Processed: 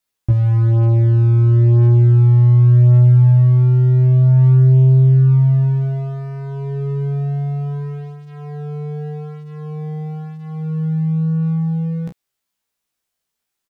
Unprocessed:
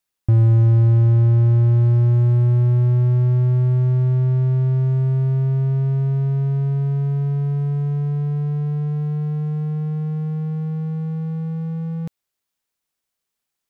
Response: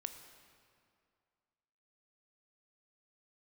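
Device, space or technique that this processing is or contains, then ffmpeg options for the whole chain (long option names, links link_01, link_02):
double-tracked vocal: -filter_complex "[0:a]asplit=2[link_01][link_02];[link_02]adelay=31,volume=-7dB[link_03];[link_01][link_03]amix=inputs=2:normalize=0,flanger=delay=15.5:depth=2.5:speed=0.4,volume=5dB"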